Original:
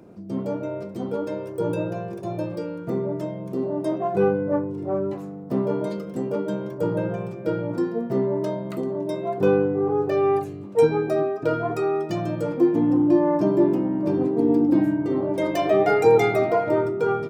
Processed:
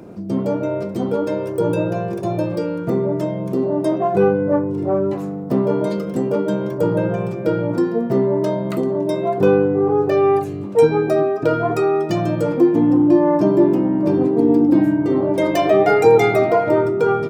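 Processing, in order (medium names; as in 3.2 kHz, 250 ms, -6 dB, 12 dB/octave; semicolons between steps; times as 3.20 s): in parallel at +1.5 dB: compression, threshold -28 dBFS, peak gain reduction 15.5 dB; on the sum: trim +2.5 dB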